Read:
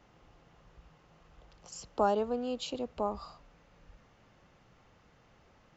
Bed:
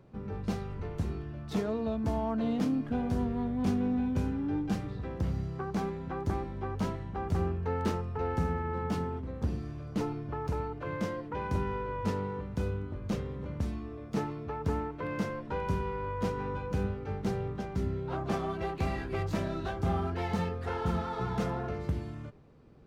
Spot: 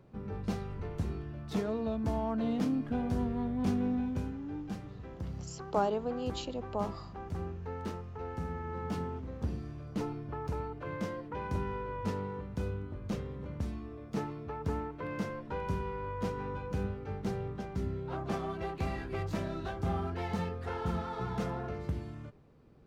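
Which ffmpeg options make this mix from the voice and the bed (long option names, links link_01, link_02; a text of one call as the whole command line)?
ffmpeg -i stem1.wav -i stem2.wav -filter_complex "[0:a]adelay=3750,volume=-2dB[link_01];[1:a]volume=3.5dB,afade=type=out:start_time=3.88:duration=0.52:silence=0.473151,afade=type=in:start_time=8.38:duration=0.64:silence=0.562341[link_02];[link_01][link_02]amix=inputs=2:normalize=0" out.wav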